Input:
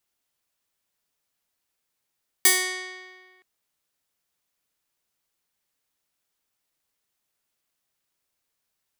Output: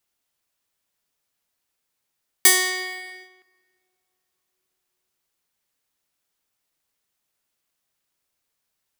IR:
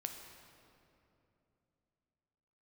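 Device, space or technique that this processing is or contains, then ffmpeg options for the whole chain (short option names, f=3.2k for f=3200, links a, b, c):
keyed gated reverb: -filter_complex "[0:a]asplit=3[a][b][c];[1:a]atrim=start_sample=2205[d];[b][d]afir=irnorm=-1:irlink=0[e];[c]apad=whole_len=396574[f];[e][f]sidechaingate=range=-11dB:threshold=-52dB:ratio=16:detection=peak,volume=-2dB[g];[a][g]amix=inputs=2:normalize=0"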